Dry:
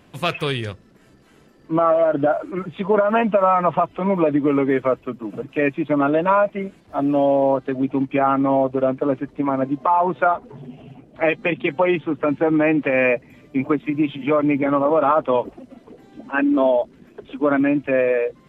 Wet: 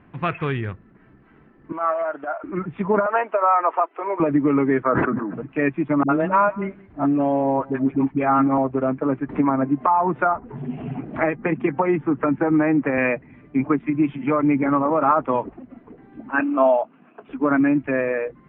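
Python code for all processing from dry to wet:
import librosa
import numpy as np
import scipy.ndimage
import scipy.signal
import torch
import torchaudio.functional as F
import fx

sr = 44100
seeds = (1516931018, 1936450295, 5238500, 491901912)

y = fx.chain(x, sr, fx.highpass(hz=690.0, slope=12),
    fx.transient(attack_db=-9, sustain_db=-2), at=(1.72, 2.44))
y = fx.chain(y, sr, fx.steep_highpass(hz=370.0, slope=36),
    fx.resample_linear(factor=4), at=(3.06, 4.2))
y = fx.chain(y, sr, fx.highpass(hz=210.0, slope=12),
    fx.high_shelf_res(hz=2100.0, db=-8.5, q=3.0),
    fx.sustainer(db_per_s=34.0), at=(4.83, 5.34))
y = fx.chain(y, sr, fx.dispersion(late='highs', ms=64.0, hz=390.0),
    fx.echo_single(ms=181, db=-23.0), at=(6.03, 8.58))
y = fx.chain(y, sr, fx.env_lowpass_down(base_hz=1900.0, full_db=-18.5),
    fx.band_squash(depth_pct=70), at=(9.29, 12.98))
y = fx.chain(y, sr, fx.cabinet(low_hz=280.0, low_slope=12, high_hz=3900.0, hz=(370.0, 700.0, 1200.0, 1900.0, 2700.0), db=(-10, 8, 8, -7, 10)),
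    fx.doubler(ms=19.0, db=-14.0), at=(16.4, 17.28))
y = scipy.signal.sosfilt(scipy.signal.butter(4, 2100.0, 'lowpass', fs=sr, output='sos'), y)
y = fx.peak_eq(y, sr, hz=540.0, db=-8.0, octaves=0.67)
y = y * 10.0 ** (1.5 / 20.0)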